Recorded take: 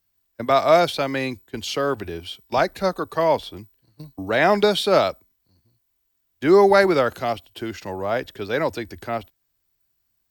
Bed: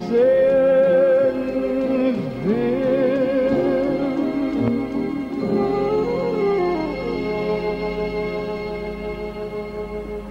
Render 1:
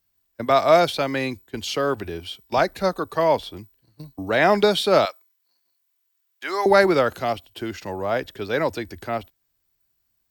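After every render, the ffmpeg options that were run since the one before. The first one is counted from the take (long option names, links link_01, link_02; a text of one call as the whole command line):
ffmpeg -i in.wav -filter_complex "[0:a]asettb=1/sr,asplit=3[link_01][link_02][link_03];[link_01]atrim=end=5.054[link_04];[link_02]atrim=start=5.05:end=6.66,asetpts=PTS-STARTPTS,afade=type=in:duration=0.004:curve=qsin,afade=type=out:start_time=1.606:duration=0.004:curve=qsin,highpass=1000[link_05];[link_03]atrim=start=6.656[link_06];[link_04][link_05]acrossfade=duration=0.004:curve1=hsin:curve2=qsin[link_07];[link_07][link_06]acrossfade=duration=0.004:curve1=qsin:curve2=hsin" out.wav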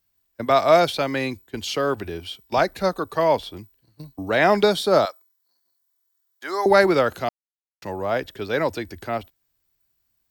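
ffmpeg -i in.wav -filter_complex "[0:a]asettb=1/sr,asplit=3[link_01][link_02][link_03];[link_01]atrim=end=4.734[link_04];[link_02]atrim=start=4.73:end=6.7,asetpts=PTS-STARTPTS,afade=type=in:duration=0.004:curve=qsin,afade=type=out:start_time=1.966:duration=0.004:curve=qsin,equalizer=frequency=2600:width_type=o:width=0.63:gain=-11[link_05];[link_03]atrim=start=6.696[link_06];[link_04][link_05]acrossfade=duration=0.004:curve1=hsin:curve2=qsin[link_07];[link_07][link_06]acrossfade=duration=0.004:curve1=qsin:curve2=hsin,asplit=3[link_08][link_09][link_10];[link_08]atrim=end=7.29,asetpts=PTS-STARTPTS,afade=type=out:start_time=7.286:duration=0.004:curve=hsin[link_11];[link_09]atrim=start=7.29:end=7.82,asetpts=PTS-STARTPTS,volume=0[link_12];[link_10]atrim=start=7.82,asetpts=PTS-STARTPTS,afade=type=in:duration=0.004:curve=hsin[link_13];[link_11][link_12][link_13]concat=n=3:v=0:a=1" out.wav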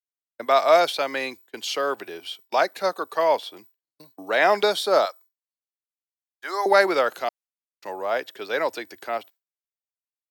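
ffmpeg -i in.wav -af "agate=range=-33dB:threshold=-41dB:ratio=3:detection=peak,highpass=470" out.wav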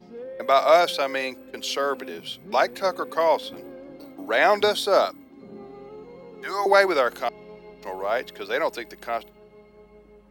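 ffmpeg -i in.wav -i bed.wav -filter_complex "[1:a]volume=-22dB[link_01];[0:a][link_01]amix=inputs=2:normalize=0" out.wav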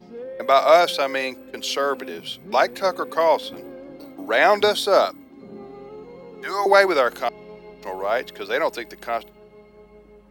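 ffmpeg -i in.wav -af "volume=2.5dB" out.wav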